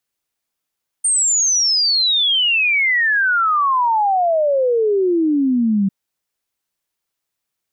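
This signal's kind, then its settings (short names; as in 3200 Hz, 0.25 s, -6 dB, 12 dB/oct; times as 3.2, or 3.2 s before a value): log sweep 8900 Hz -> 190 Hz 4.85 s -13 dBFS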